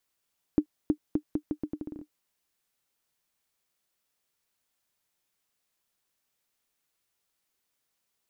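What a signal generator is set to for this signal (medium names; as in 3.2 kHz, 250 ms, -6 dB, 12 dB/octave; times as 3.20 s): bouncing ball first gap 0.32 s, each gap 0.79, 301 Hz, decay 79 ms -11.5 dBFS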